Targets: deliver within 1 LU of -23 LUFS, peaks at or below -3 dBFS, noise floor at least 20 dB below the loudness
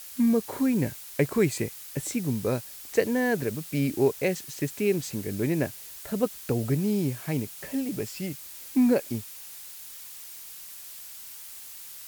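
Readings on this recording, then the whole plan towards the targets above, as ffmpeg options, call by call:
noise floor -43 dBFS; noise floor target -48 dBFS; loudness -28.0 LUFS; peak level -9.0 dBFS; loudness target -23.0 LUFS
-> -af "afftdn=nr=6:nf=-43"
-af "volume=1.78"

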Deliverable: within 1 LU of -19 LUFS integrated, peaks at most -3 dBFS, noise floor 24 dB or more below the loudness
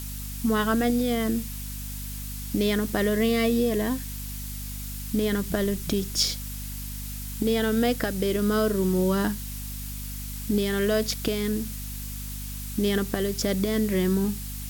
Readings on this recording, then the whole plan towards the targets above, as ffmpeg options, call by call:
hum 50 Hz; highest harmonic 250 Hz; hum level -34 dBFS; noise floor -35 dBFS; noise floor target -51 dBFS; loudness -26.5 LUFS; peak level -11.0 dBFS; loudness target -19.0 LUFS
-> -af "bandreject=f=50:t=h:w=6,bandreject=f=100:t=h:w=6,bandreject=f=150:t=h:w=6,bandreject=f=200:t=h:w=6,bandreject=f=250:t=h:w=6"
-af "afftdn=nr=16:nf=-35"
-af "volume=2.37"

